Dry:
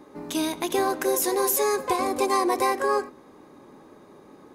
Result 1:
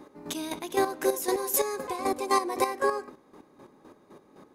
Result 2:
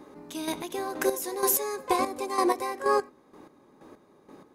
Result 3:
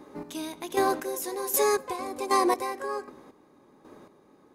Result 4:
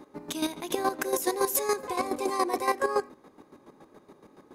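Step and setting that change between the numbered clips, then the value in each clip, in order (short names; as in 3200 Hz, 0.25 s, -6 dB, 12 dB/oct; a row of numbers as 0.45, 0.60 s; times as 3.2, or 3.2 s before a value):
chopper, rate: 3.9, 2.1, 1.3, 7.1 Hz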